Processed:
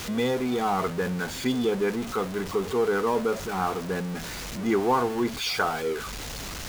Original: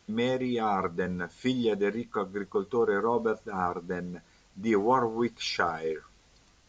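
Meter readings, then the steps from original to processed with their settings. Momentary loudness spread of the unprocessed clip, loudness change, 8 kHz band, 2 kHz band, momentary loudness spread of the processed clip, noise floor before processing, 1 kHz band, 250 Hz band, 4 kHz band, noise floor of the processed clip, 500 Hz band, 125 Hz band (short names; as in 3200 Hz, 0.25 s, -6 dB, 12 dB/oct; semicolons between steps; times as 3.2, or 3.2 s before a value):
9 LU, +2.0 dB, n/a, +3.0 dB, 8 LU, -62 dBFS, +2.0 dB, +3.0 dB, +5.5 dB, -36 dBFS, +2.5 dB, +4.5 dB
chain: zero-crossing step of -30 dBFS; pre-echo 0.125 s -22 dB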